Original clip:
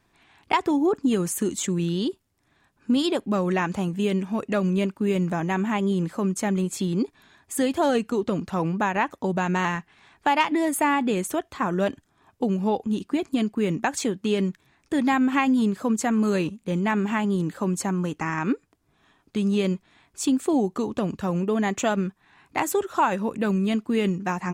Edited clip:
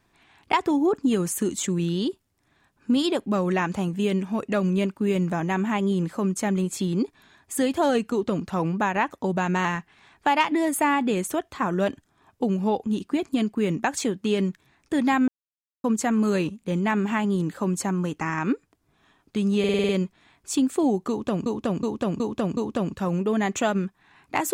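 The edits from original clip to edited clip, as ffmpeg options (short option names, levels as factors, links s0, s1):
-filter_complex "[0:a]asplit=13[s0][s1][s2][s3][s4][s5][s6][s7][s8][s9][s10][s11][s12];[s0]atrim=end=15.28,asetpts=PTS-STARTPTS,afade=t=out:st=15.276:d=0.004:c=hsin[s13];[s1]atrim=start=15.28:end=15.84,asetpts=PTS-STARTPTS,volume=0[s14];[s2]atrim=start=15.84:end=19.642,asetpts=PTS-STARTPTS,afade=t=in:d=0.004:c=hsin[s15];[s3]atrim=start=19.588:end=19.642[s16];[s4]atrim=start=19.588:end=19.642[s17];[s5]atrim=start=19.588:end=19.642[s18];[s6]atrim=start=19.588:end=19.642[s19];[s7]atrim=start=19.588:end=19.642[s20];[s8]atrim=start=19.588:end=21.162[s21];[s9]atrim=start=20.788:end=21.162[s22];[s10]atrim=start=20.788:end=21.162[s23];[s11]atrim=start=20.788:end=21.162[s24];[s12]atrim=start=20.788[s25];[s13][s14][s15]concat=n=3:v=0:a=1[s26];[s26][s16]acrossfade=d=0.004:c1=hsin:c2=hsin[s27];[s27][s17]acrossfade=d=0.004:c1=hsin:c2=hsin[s28];[s28][s18]acrossfade=d=0.004:c1=hsin:c2=hsin[s29];[s29][s19]acrossfade=d=0.004:c1=hsin:c2=hsin[s30];[s30][s20]acrossfade=d=0.004:c1=hsin:c2=hsin[s31];[s31][s21]acrossfade=d=0.004:c1=hsin:c2=hsin[s32];[s32][s22]acrossfade=d=0.004:c1=hsin:c2=hsin[s33];[s33][s23]acrossfade=d=0.004:c1=hsin:c2=hsin[s34];[s34][s24]acrossfade=d=0.004:c1=hsin:c2=hsin[s35];[s35][s25]acrossfade=d=0.004:c1=hsin:c2=hsin"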